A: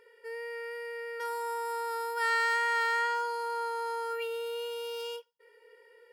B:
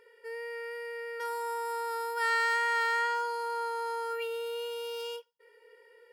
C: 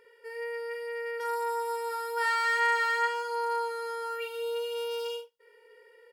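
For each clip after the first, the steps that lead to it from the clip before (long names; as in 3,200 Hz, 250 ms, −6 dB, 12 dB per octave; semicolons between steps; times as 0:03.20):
no processing that can be heard
on a send: ambience of single reflections 47 ms −5.5 dB, 77 ms −16 dB; on the sum: AAC 192 kbit/s 48,000 Hz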